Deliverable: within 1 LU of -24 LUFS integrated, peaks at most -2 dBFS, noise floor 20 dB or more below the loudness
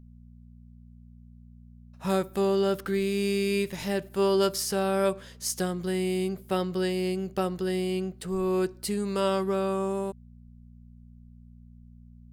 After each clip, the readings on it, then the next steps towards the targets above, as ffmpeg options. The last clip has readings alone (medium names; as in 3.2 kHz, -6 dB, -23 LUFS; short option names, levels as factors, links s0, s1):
hum 60 Hz; highest harmonic 240 Hz; hum level -48 dBFS; loudness -28.0 LUFS; peak level -13.0 dBFS; loudness target -24.0 LUFS
-> -af "bandreject=f=60:t=h:w=4,bandreject=f=120:t=h:w=4,bandreject=f=180:t=h:w=4,bandreject=f=240:t=h:w=4"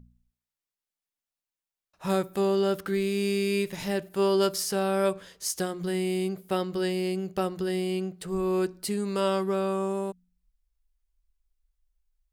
hum not found; loudness -28.5 LUFS; peak level -13.5 dBFS; loudness target -24.0 LUFS
-> -af "volume=1.68"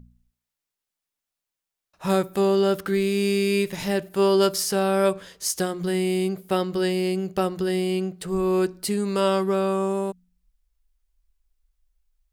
loudness -24.0 LUFS; peak level -9.0 dBFS; noise floor -87 dBFS